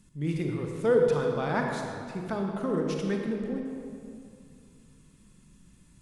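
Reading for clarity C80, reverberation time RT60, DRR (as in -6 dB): 3.0 dB, 2.5 s, 1.0 dB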